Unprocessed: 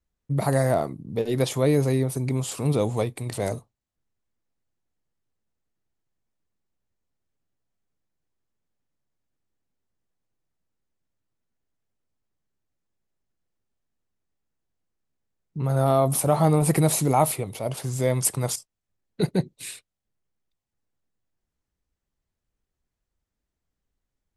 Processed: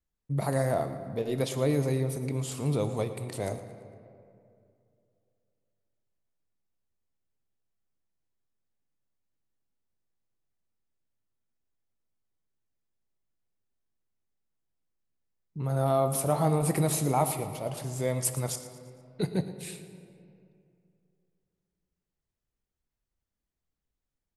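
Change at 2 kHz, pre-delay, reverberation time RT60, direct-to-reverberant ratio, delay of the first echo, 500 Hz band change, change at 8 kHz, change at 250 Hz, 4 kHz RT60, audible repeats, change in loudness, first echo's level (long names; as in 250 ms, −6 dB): −5.5 dB, 21 ms, 2.5 s, 8.5 dB, 114 ms, −5.0 dB, −5.5 dB, −5.5 dB, 1.3 s, 3, −5.5 dB, −15.0 dB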